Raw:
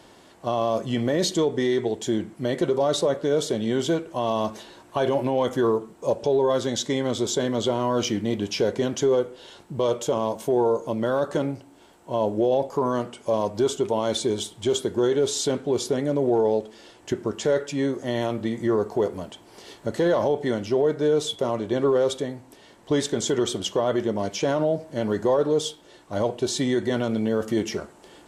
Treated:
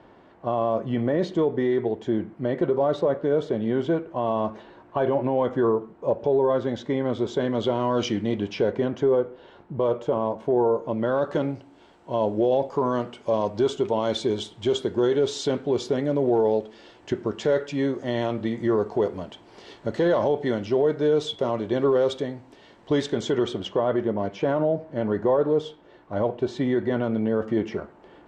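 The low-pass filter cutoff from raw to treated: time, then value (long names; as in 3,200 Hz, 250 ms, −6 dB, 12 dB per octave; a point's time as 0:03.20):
0:07.04 1,800 Hz
0:08.06 4,200 Hz
0:09.02 1,700 Hz
0:10.61 1,700 Hz
0:11.53 4,200 Hz
0:22.94 4,200 Hz
0:23.98 2,000 Hz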